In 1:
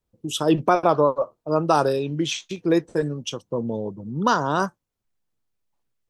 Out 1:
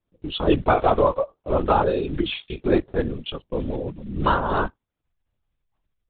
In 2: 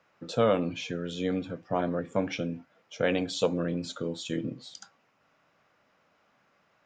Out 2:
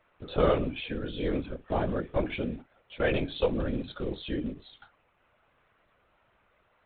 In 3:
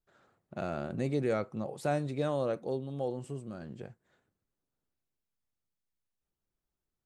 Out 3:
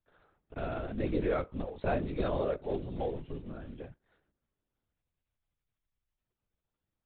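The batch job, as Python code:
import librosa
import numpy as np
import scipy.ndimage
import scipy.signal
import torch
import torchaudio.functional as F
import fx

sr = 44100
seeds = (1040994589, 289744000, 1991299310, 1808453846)

y = fx.block_float(x, sr, bits=5)
y = fx.lpc_vocoder(y, sr, seeds[0], excitation='whisper', order=16)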